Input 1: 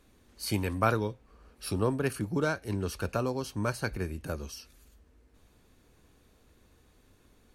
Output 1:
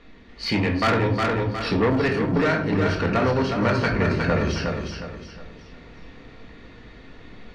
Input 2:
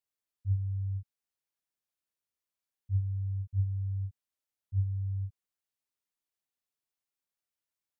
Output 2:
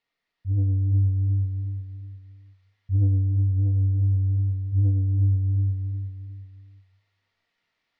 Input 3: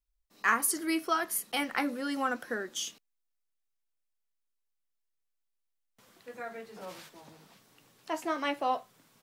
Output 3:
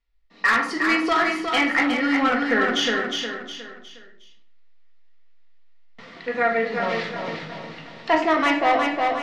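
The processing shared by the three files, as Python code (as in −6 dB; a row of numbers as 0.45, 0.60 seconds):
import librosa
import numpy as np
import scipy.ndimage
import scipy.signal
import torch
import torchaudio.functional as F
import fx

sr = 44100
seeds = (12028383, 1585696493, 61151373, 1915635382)

y = scipy.signal.sosfilt(scipy.signal.butter(4, 4400.0, 'lowpass', fs=sr, output='sos'), x)
y = fx.notch(y, sr, hz=1600.0, q=15.0)
y = fx.room_shoebox(y, sr, seeds[0], volume_m3=550.0, walls='furnished', distance_m=1.7)
y = 10.0 ** (-26.0 / 20.0) * np.tanh(y / 10.0 ** (-26.0 / 20.0))
y = fx.peak_eq(y, sr, hz=1900.0, db=8.5, octaves=0.39)
y = fx.echo_feedback(y, sr, ms=361, feedback_pct=37, wet_db=-6.0)
y = fx.rider(y, sr, range_db=4, speed_s=0.5)
y = fx.low_shelf(y, sr, hz=110.0, db=-4.5)
y = y * 10.0 ** (-24 / 20.0) / np.sqrt(np.mean(np.square(y)))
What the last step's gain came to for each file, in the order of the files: +11.0, +11.5, +12.0 decibels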